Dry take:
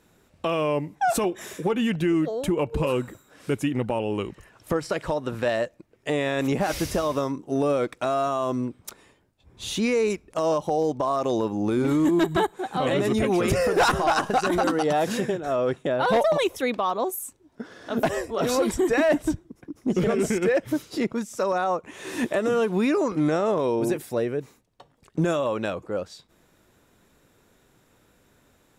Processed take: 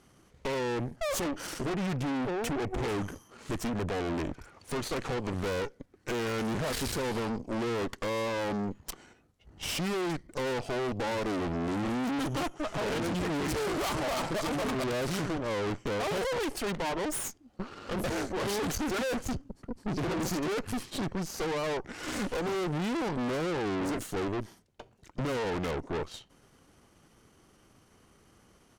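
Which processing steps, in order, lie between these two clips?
soft clipping −30 dBFS, distortion −7 dB
pitch shifter −3.5 semitones
harmonic generator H 4 −8 dB, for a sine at −26.5 dBFS

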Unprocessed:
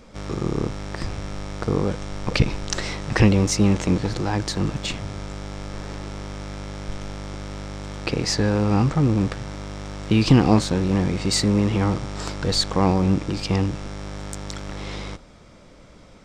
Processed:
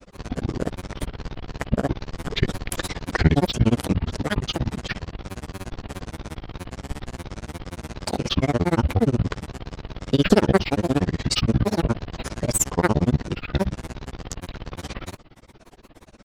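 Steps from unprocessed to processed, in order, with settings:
granular cloud 59 ms, grains 17 per second, spray 19 ms, pitch spread up and down by 12 semitones
level +2.5 dB

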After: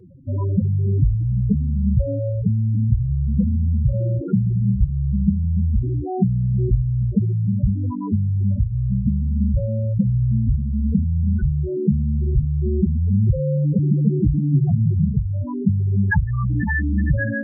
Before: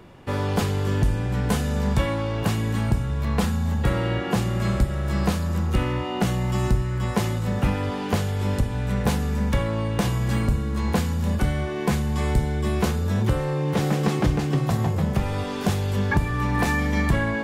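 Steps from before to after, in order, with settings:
spectral peaks only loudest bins 4
notch comb filter 620 Hz
level +7.5 dB

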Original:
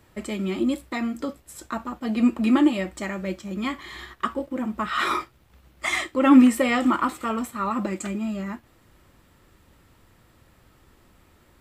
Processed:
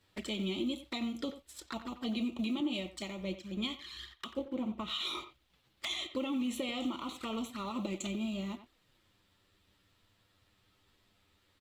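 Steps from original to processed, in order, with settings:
mu-law and A-law mismatch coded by A
parametric band 3,700 Hz +12.5 dB 1.3 octaves
brickwall limiter −15.5 dBFS, peak gain reduction 11 dB
downward compressor 5 to 1, threshold −26 dBFS, peak gain reduction 7 dB
flanger swept by the level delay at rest 11.5 ms, full sweep at −29.5 dBFS
far-end echo of a speakerphone 90 ms, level −11 dB
0:02.60–0:05.15: multiband upward and downward expander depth 70%
level −5 dB

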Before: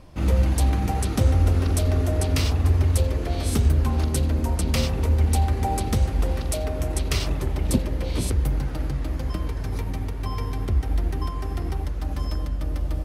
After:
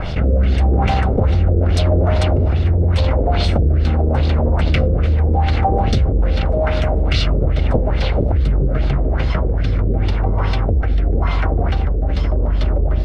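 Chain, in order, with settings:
lower of the sound and its delayed copy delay 1.4 ms
auto-filter low-pass sine 2.4 Hz 430–4,200 Hz
rotating-speaker cabinet horn 0.85 Hz
envelope flattener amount 70%
level +4 dB

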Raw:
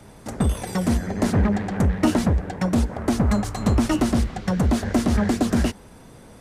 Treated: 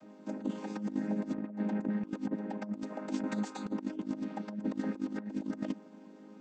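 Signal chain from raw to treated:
channel vocoder with a chord as carrier major triad, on G#3
0:02.82–0:03.66: spectral tilt +2.5 dB per octave
compressor whose output falls as the input rises −27 dBFS, ratio −0.5
level −7.5 dB

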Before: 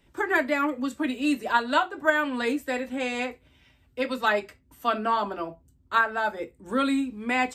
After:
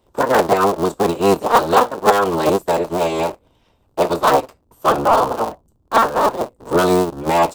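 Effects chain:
sub-harmonics by changed cycles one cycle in 3, inverted
octave-band graphic EQ 500/1,000/2,000 Hz +6/+8/−12 dB
leveller curve on the samples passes 1
level +3 dB

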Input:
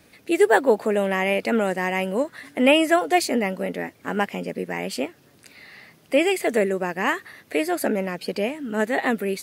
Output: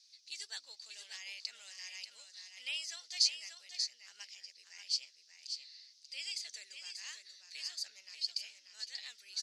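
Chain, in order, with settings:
flat-topped band-pass 5,100 Hz, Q 2.6
single-tap delay 587 ms −7 dB
level +3.5 dB

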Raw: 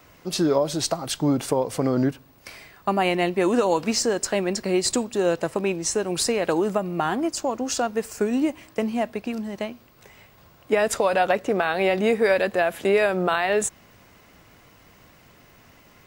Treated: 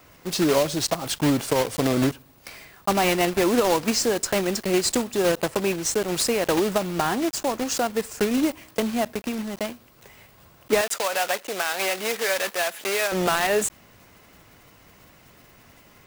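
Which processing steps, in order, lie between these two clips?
one scale factor per block 3 bits
0:10.81–0:13.12: high-pass filter 1,100 Hz 6 dB per octave

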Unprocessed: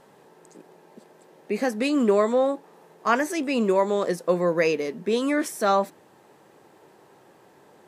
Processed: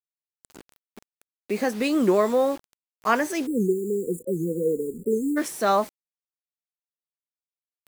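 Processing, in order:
bit reduction 7 bits
time-frequency box erased 0:03.46–0:05.37, 510–6,800 Hz
wow of a warped record 78 rpm, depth 160 cents

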